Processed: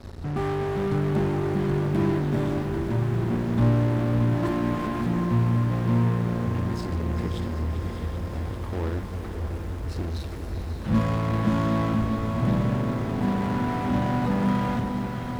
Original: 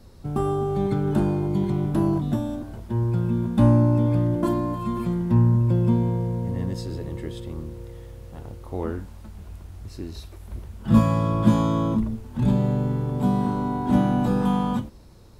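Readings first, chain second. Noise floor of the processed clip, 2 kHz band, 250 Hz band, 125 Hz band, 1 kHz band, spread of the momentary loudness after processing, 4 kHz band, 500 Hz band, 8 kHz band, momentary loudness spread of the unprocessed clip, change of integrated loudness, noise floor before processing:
-33 dBFS, +6.5 dB, -2.5 dB, -1.5 dB, -0.5 dB, 9 LU, +2.0 dB, -1.0 dB, n/a, 21 LU, -3.0 dB, -43 dBFS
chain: bell 80 Hz +13 dB 0.24 oct; in parallel at -9.5 dB: fuzz box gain 41 dB, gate -46 dBFS; on the sum: LPF 4000 Hz 6 dB/oct; bell 1800 Hz +3 dB 0.49 oct; diffused feedback echo 0.587 s, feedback 65%, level -8 dB; reverse; upward compressor, threshold -22 dBFS; reverse; lo-fi delay 0.39 s, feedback 80%, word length 7-bit, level -11.5 dB; gain -8.5 dB

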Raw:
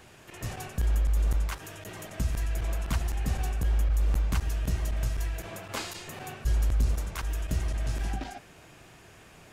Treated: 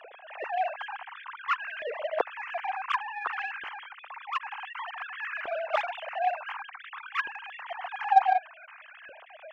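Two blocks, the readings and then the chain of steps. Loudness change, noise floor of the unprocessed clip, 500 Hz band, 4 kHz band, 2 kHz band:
-0.5 dB, -53 dBFS, +8.0 dB, 0.0 dB, +9.0 dB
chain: sine-wave speech; added harmonics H 7 -28 dB, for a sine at -7 dBFS; LFO high-pass saw up 0.55 Hz 400–1600 Hz; gain -7.5 dB

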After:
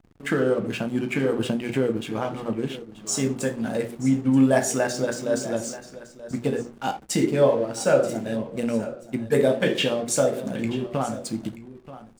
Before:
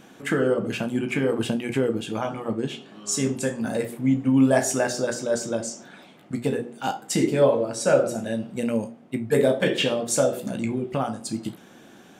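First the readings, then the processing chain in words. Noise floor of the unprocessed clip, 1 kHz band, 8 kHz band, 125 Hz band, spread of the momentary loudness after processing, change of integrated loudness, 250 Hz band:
-50 dBFS, 0.0 dB, -1.0 dB, 0.0 dB, 12 LU, 0.0 dB, 0.0 dB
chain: backlash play -36.5 dBFS; echo 0.931 s -15.5 dB

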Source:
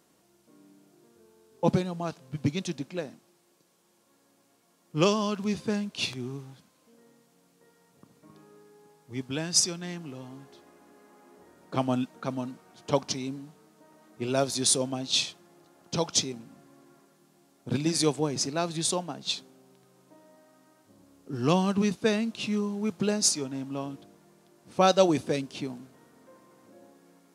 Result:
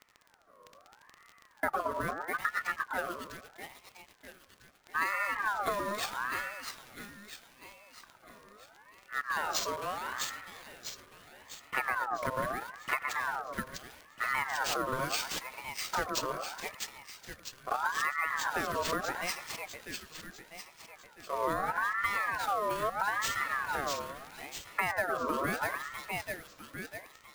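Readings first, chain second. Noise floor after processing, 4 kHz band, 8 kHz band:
-61 dBFS, -8.5 dB, -10.5 dB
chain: high shelf 2400 Hz -9.5 dB; wow and flutter 39 cents; in parallel at -7 dB: bit-crush 6-bit; on the sum: crackle 46/s -38 dBFS; sample-rate reducer 11000 Hz, jitter 0%; on a send: split-band echo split 670 Hz, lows 0.114 s, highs 0.65 s, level -6 dB; on the sum: compressor 10:1, threshold -25 dBFS, peak gain reduction 14 dB; ring modulator with a swept carrier 1200 Hz, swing 35%, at 0.77 Hz

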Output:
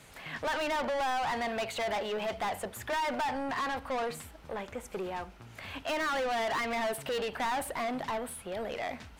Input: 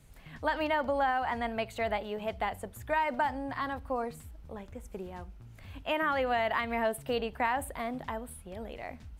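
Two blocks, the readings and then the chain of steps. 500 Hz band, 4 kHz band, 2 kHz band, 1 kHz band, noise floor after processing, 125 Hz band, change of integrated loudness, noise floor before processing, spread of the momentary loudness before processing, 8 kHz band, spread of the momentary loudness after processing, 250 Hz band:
-0.5 dB, +4.0 dB, -0.5 dB, -1.0 dB, -53 dBFS, -3.5 dB, -1.0 dB, -51 dBFS, 16 LU, +6.5 dB, 9 LU, -1.5 dB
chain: overdrive pedal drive 29 dB, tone 4500 Hz, clips at -16.5 dBFS; gain -8.5 dB

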